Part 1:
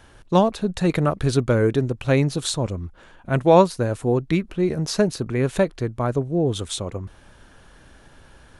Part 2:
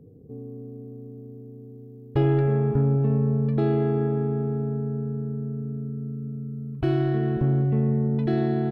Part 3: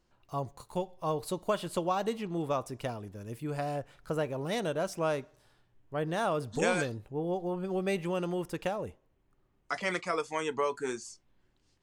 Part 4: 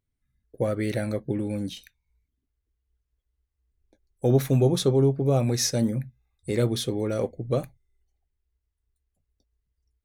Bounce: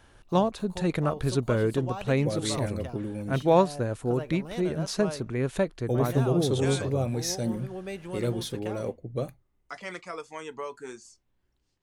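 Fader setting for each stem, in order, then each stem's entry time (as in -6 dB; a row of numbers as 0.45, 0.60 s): -6.5 dB, off, -6.0 dB, -5.5 dB; 0.00 s, off, 0.00 s, 1.65 s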